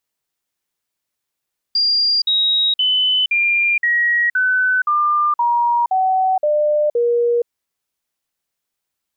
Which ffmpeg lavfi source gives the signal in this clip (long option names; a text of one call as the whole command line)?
ffmpeg -f lavfi -i "aevalsrc='0.224*clip(min(mod(t,0.52),0.47-mod(t,0.52))/0.005,0,1)*sin(2*PI*4790*pow(2,-floor(t/0.52)/3)*mod(t,0.52))':duration=5.72:sample_rate=44100" out.wav